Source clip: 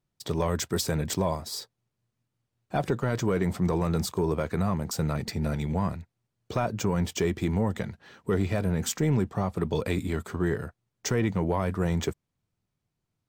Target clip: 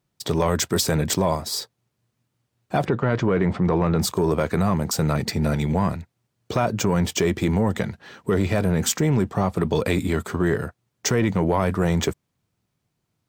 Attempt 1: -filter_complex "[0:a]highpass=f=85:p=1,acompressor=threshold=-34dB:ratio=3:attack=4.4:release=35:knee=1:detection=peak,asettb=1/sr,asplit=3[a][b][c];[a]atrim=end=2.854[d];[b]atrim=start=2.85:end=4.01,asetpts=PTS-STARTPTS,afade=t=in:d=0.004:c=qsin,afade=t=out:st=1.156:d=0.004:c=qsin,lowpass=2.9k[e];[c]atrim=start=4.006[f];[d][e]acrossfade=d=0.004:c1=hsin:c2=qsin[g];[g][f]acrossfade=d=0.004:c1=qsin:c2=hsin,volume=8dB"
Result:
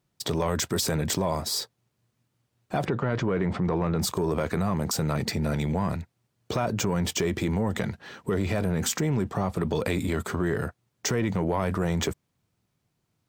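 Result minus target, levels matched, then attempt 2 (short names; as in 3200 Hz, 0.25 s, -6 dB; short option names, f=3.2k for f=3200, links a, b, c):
compressor: peak gain reduction +5.5 dB
-filter_complex "[0:a]highpass=f=85:p=1,acompressor=threshold=-25.5dB:ratio=3:attack=4.4:release=35:knee=1:detection=peak,asettb=1/sr,asplit=3[a][b][c];[a]atrim=end=2.854[d];[b]atrim=start=2.85:end=4.01,asetpts=PTS-STARTPTS,afade=t=in:d=0.004:c=qsin,afade=t=out:st=1.156:d=0.004:c=qsin,lowpass=2.9k[e];[c]atrim=start=4.006[f];[d][e]acrossfade=d=0.004:c1=hsin:c2=qsin[g];[g][f]acrossfade=d=0.004:c1=qsin:c2=hsin,volume=8dB"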